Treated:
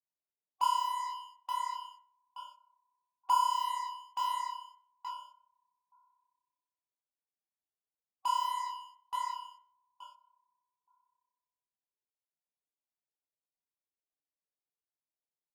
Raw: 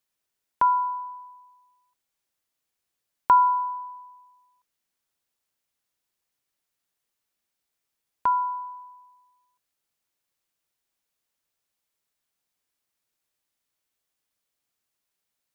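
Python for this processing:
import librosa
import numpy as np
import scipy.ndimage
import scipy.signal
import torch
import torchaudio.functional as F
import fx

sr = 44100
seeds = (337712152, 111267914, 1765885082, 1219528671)

p1 = scipy.signal.sosfilt(scipy.signal.butter(4, 1100.0, 'lowpass', fs=sr, output='sos'), x)
p2 = fx.echo_feedback(p1, sr, ms=874, feedback_pct=21, wet_db=-11.0)
p3 = fx.spec_topn(p2, sr, count=16)
p4 = fx.fuzz(p3, sr, gain_db=38.0, gate_db=-47.0)
p5 = p3 + F.gain(torch.from_numpy(p4), -10.0).numpy()
p6 = fx.highpass(p5, sr, hz=91.0, slope=6)
p7 = fx.low_shelf(p6, sr, hz=480.0, db=-4.0)
p8 = fx.room_shoebox(p7, sr, seeds[0], volume_m3=2600.0, walls='furnished', distance_m=0.49)
p9 = fx.detune_double(p8, sr, cents=56)
y = F.gain(torch.from_numpy(p9), -6.0).numpy()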